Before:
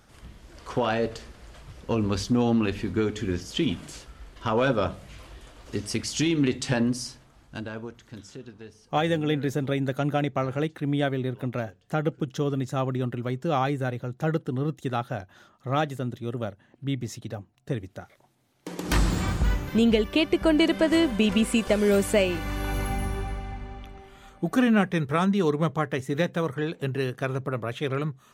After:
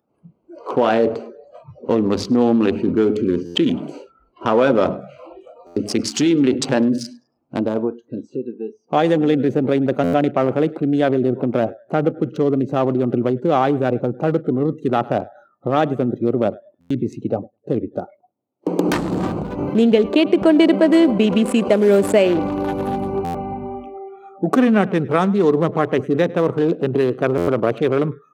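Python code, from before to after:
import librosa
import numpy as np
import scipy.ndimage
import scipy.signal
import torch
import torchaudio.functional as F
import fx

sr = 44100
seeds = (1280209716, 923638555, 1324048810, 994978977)

p1 = fx.wiener(x, sr, points=25)
p2 = fx.high_shelf(p1, sr, hz=6300.0, db=-4.0)
p3 = fx.over_compress(p2, sr, threshold_db=-32.0, ratio=-1.0)
p4 = p2 + F.gain(torch.from_numpy(p3), 2.0).numpy()
p5 = scipy.signal.sosfilt(scipy.signal.butter(2, 270.0, 'highpass', fs=sr, output='sos'), p4)
p6 = p5 + fx.echo_filtered(p5, sr, ms=103, feedback_pct=52, hz=3400.0, wet_db=-20.5, dry=0)
p7 = fx.noise_reduce_blind(p6, sr, reduce_db=26)
p8 = fx.tilt_shelf(p7, sr, db=4.0, hz=870.0)
p9 = fx.buffer_glitch(p8, sr, at_s=(3.45, 5.66, 10.03, 16.8, 23.24, 27.37), block=512, repeats=8)
y = F.gain(torch.from_numpy(p9), 6.0).numpy()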